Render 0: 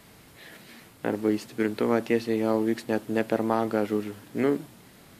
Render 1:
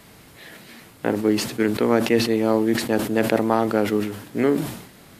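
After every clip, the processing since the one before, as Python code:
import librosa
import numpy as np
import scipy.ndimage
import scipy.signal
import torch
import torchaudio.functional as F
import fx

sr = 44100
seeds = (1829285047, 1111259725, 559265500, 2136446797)

y = fx.sustainer(x, sr, db_per_s=77.0)
y = F.gain(torch.from_numpy(y), 4.5).numpy()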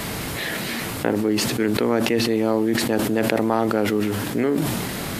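y = fx.env_flatten(x, sr, amount_pct=70)
y = F.gain(torch.from_numpy(y), -4.0).numpy()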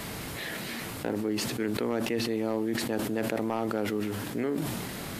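y = np.clip(10.0 ** (10.0 / 20.0) * x, -1.0, 1.0) / 10.0 ** (10.0 / 20.0)
y = F.gain(torch.from_numpy(y), -9.0).numpy()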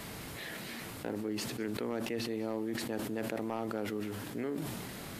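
y = x + 10.0 ** (-22.0 / 20.0) * np.pad(x, (int(196 * sr / 1000.0), 0))[:len(x)]
y = F.gain(torch.from_numpy(y), -6.5).numpy()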